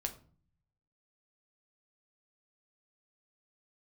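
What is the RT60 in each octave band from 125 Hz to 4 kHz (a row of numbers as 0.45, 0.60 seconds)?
1.2, 0.80, 0.45, 0.40, 0.35, 0.30 seconds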